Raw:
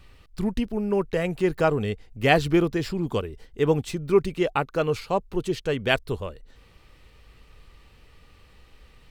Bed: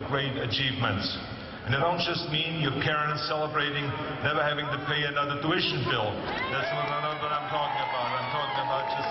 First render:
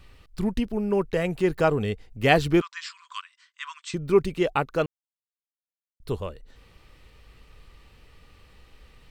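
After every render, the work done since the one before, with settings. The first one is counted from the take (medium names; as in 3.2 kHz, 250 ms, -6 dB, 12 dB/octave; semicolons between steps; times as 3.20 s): 2.61–3.94 s: brick-wall FIR band-pass 960–8500 Hz; 4.86–6.00 s: mute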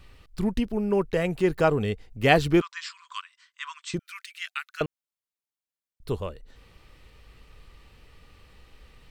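3.99–4.81 s: steep high-pass 1.5 kHz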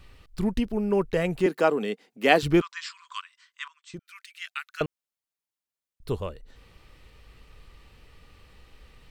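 1.46–2.43 s: steep high-pass 200 Hz; 3.68–4.76 s: fade in, from -21.5 dB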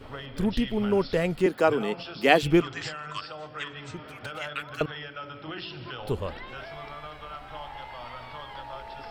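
add bed -11.5 dB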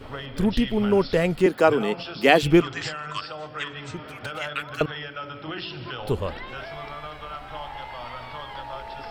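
trim +4 dB; peak limiter -1 dBFS, peak gain reduction 2.5 dB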